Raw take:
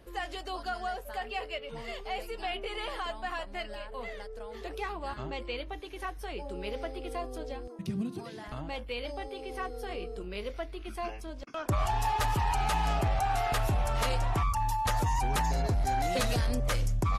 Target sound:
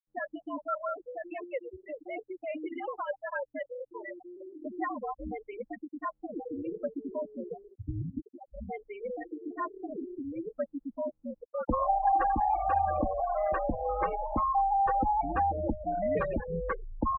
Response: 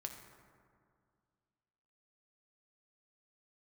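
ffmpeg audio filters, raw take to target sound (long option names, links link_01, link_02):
-af "afftfilt=real='re*gte(hypot(re,im),0.0562)':imag='im*gte(hypot(re,im),0.0562)':win_size=1024:overlap=0.75,highpass=frequency=150:width_type=q:width=0.5412,highpass=frequency=150:width_type=q:width=1.307,lowpass=frequency=2100:width_type=q:width=0.5176,lowpass=frequency=2100:width_type=q:width=0.7071,lowpass=frequency=2100:width_type=q:width=1.932,afreqshift=-83,aecho=1:1:3.7:0.57,volume=2.5dB"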